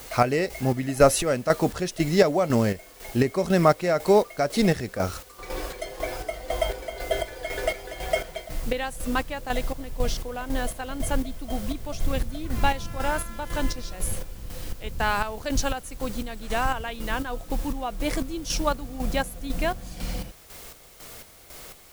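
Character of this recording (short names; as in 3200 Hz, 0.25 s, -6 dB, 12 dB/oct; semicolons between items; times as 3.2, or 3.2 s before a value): a quantiser's noise floor 8-bit, dither triangular; chopped level 2 Hz, depth 60%, duty 45%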